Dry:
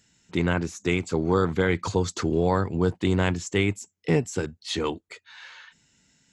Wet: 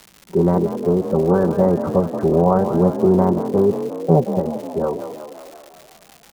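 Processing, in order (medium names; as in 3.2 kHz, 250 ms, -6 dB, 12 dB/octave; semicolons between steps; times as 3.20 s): formant shift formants +4 st; inverse Chebyshev low-pass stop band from 2.6 kHz, stop band 50 dB; comb 5.2 ms, depth 64%; on a send: frequency-shifting echo 179 ms, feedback 63%, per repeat +36 Hz, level -10 dB; on the sum: crackle 270 per s -37 dBFS; trim +6.5 dB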